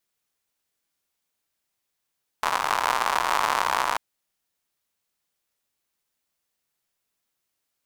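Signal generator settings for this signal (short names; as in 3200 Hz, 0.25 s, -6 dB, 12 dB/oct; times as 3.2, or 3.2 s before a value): rain from filtered ticks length 1.54 s, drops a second 140, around 1000 Hz, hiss -23.5 dB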